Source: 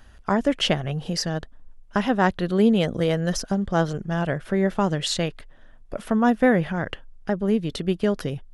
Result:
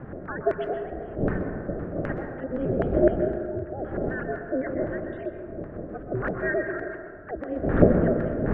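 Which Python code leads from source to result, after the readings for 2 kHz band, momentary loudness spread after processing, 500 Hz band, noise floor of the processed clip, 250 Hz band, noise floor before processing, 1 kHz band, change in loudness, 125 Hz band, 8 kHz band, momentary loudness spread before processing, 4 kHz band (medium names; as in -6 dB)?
-4.0 dB, 14 LU, -1.0 dB, -39 dBFS, -5.0 dB, -47 dBFS, -8.0 dB, -4.0 dB, -3.5 dB, under -40 dB, 10 LU, under -25 dB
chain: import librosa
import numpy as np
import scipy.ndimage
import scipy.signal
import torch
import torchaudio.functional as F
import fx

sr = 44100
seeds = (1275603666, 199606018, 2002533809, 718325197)

p1 = fx.sine_speech(x, sr)
p2 = fx.dmg_wind(p1, sr, seeds[0], corner_hz=350.0, level_db=-20.0)
p3 = fx.notch(p2, sr, hz=820.0, q=5.2)
p4 = fx.spec_repair(p3, sr, seeds[1], start_s=2.56, length_s=0.85, low_hz=780.0, high_hz=2200.0, source='both')
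p5 = fx.low_shelf(p4, sr, hz=470.0, db=6.0)
p6 = fx.filter_lfo_lowpass(p5, sr, shape='square', hz=3.9, low_hz=490.0, high_hz=1600.0, q=5.3)
p7 = p6 * np.sin(2.0 * np.pi * 130.0 * np.arange(len(p6)) / sr)
p8 = p7 + fx.echo_single(p7, sr, ms=128, db=-15.0, dry=0)
p9 = fx.rev_plate(p8, sr, seeds[2], rt60_s=1.7, hf_ratio=0.3, predelay_ms=110, drr_db=5.0)
y = F.gain(torch.from_numpy(p9), -15.0).numpy()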